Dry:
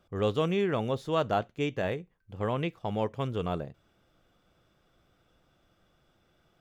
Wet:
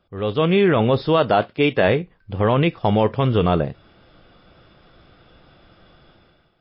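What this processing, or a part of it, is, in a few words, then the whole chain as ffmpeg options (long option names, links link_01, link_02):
low-bitrate web radio: -filter_complex "[0:a]asplit=3[link_01][link_02][link_03];[link_01]afade=type=out:start_time=1.17:duration=0.02[link_04];[link_02]highpass=frequency=190:poles=1,afade=type=in:start_time=1.17:duration=0.02,afade=type=out:start_time=1.87:duration=0.02[link_05];[link_03]afade=type=in:start_time=1.87:duration=0.02[link_06];[link_04][link_05][link_06]amix=inputs=3:normalize=0,dynaudnorm=framelen=130:gausssize=7:maxgain=15dB,alimiter=limit=-8dB:level=0:latency=1:release=21,volume=2dB" -ar 12000 -c:a libmp3lame -b:a 24k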